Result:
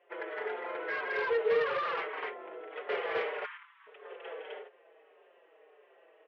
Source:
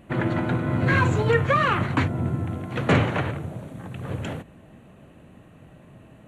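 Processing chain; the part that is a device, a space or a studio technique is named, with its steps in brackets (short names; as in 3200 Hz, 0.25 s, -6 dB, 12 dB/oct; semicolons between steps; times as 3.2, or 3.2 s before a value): Chebyshev band-pass 410–3300 Hz, order 4; 3.19–3.87 steep high-pass 960 Hz 96 dB/oct; loudspeakers at several distances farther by 55 m -6 dB, 69 m -4 dB, 88 m 0 dB; barber-pole flanger into a guitar amplifier (endless flanger 5.2 ms -1.7 Hz; soft clip -20.5 dBFS, distortion -12 dB; speaker cabinet 93–4400 Hz, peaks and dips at 260 Hz -6 dB, 440 Hz +9 dB, 2000 Hz +3 dB); gain -8.5 dB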